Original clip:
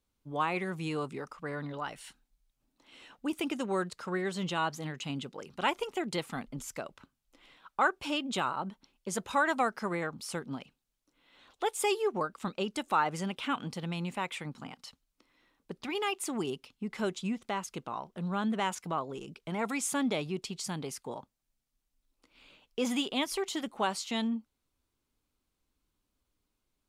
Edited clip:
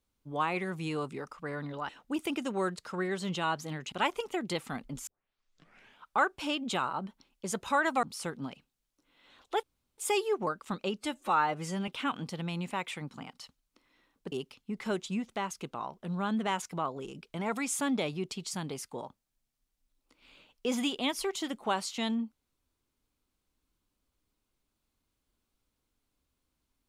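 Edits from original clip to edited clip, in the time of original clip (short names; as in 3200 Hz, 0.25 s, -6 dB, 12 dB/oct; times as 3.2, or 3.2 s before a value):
1.89–3.03 cut
5.06–5.55 cut
6.7 tape start 0.99 s
9.66–10.12 cut
11.72 insert room tone 0.35 s
12.72–13.32 stretch 1.5×
15.76–16.45 cut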